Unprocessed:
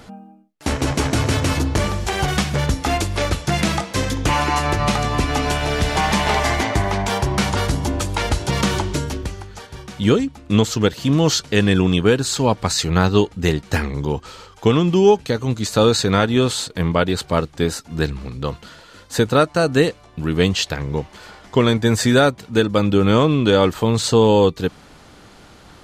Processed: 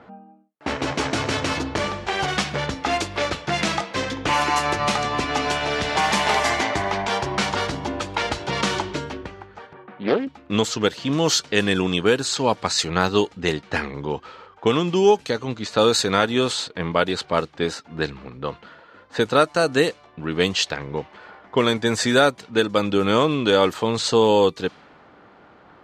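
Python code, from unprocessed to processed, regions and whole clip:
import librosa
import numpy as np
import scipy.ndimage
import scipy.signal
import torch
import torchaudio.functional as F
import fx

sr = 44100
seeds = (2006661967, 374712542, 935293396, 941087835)

y = fx.chain(x, sr, fx.bandpass_edges(low_hz=190.0, high_hz=2700.0),
    fx.air_absorb(metres=120.0),
    fx.doppler_dist(depth_ms=0.4), at=(9.73, 10.27))
y = fx.highpass(y, sr, hz=390.0, slope=6)
y = fx.env_lowpass(y, sr, base_hz=1500.0, full_db=-14.5)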